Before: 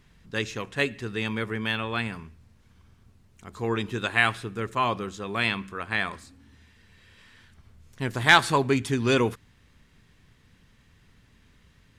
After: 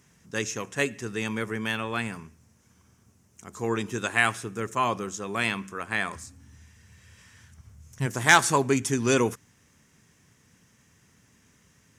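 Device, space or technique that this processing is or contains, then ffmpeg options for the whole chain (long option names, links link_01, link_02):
budget condenser microphone: -filter_complex "[0:a]asplit=3[link_01][link_02][link_03];[link_01]afade=type=out:start_time=6.14:duration=0.02[link_04];[link_02]asubboost=boost=5.5:cutoff=120,afade=type=in:start_time=6.14:duration=0.02,afade=type=out:start_time=8.05:duration=0.02[link_05];[link_03]afade=type=in:start_time=8.05:duration=0.02[link_06];[link_04][link_05][link_06]amix=inputs=3:normalize=0,highpass=110,highshelf=frequency=5000:width_type=q:width=3:gain=6"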